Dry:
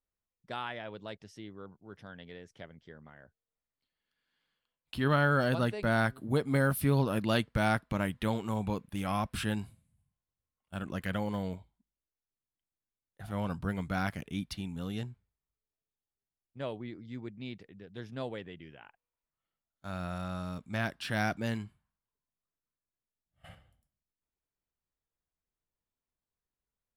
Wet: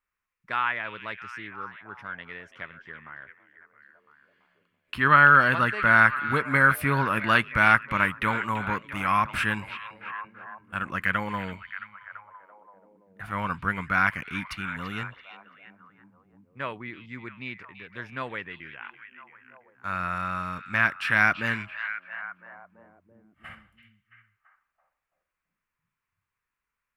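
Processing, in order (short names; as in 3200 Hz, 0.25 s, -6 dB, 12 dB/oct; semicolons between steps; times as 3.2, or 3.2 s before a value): band shelf 1600 Hz +15 dB; delay with a stepping band-pass 0.335 s, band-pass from 3100 Hz, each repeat -0.7 oct, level -8.5 dB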